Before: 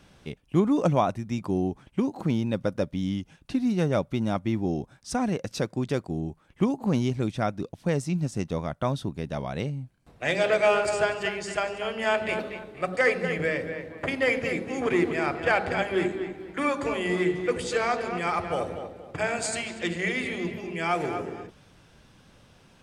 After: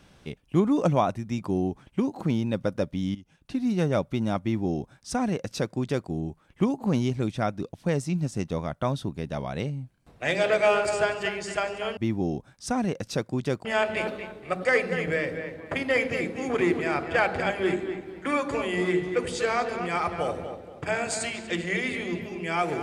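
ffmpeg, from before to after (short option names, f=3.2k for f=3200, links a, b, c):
-filter_complex "[0:a]asplit=4[a][b][c][d];[a]atrim=end=3.15,asetpts=PTS-STARTPTS,afade=t=out:st=3.146:d=0.004:c=hsin:silence=0.158489[e];[b]atrim=start=3.15:end=11.972,asetpts=PTS-STARTPTS,afade=t=in:d=0.58:silence=0.158489[f];[c]atrim=start=4.408:end=6.092[g];[d]atrim=start=11.968[h];[e][f]concat=n=2:v=0:a=1[i];[i][g]acrossfade=d=0.004:c1=hsin:c2=hsin[j];[j][h]acrossfade=d=0.004:c1=hsin:c2=hsin"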